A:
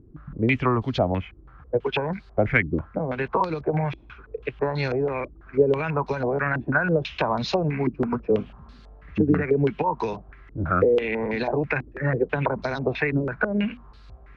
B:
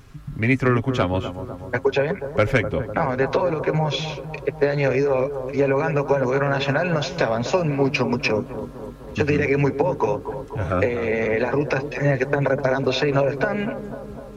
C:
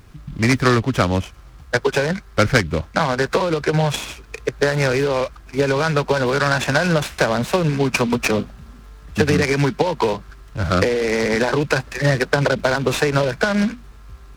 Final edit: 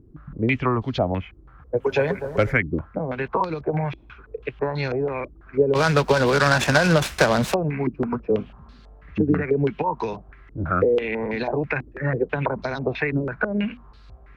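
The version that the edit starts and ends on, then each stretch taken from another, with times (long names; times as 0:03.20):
A
0:01.88–0:02.48: punch in from B, crossfade 0.24 s
0:05.75–0:07.54: punch in from C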